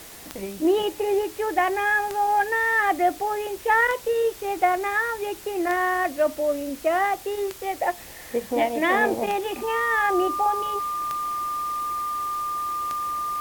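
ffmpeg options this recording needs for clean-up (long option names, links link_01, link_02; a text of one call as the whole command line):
ffmpeg -i in.wav -af "adeclick=threshold=4,bandreject=frequency=1200:width=30,afftdn=noise_reduction=28:noise_floor=-41" out.wav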